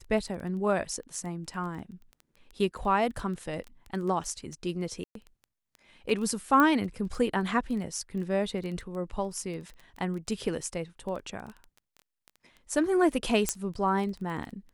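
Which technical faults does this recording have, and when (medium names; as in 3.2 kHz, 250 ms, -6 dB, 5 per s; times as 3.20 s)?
crackle 10 per s -35 dBFS
5.04–5.15 s: dropout 113 ms
6.60 s: pop -12 dBFS
13.49 s: pop -10 dBFS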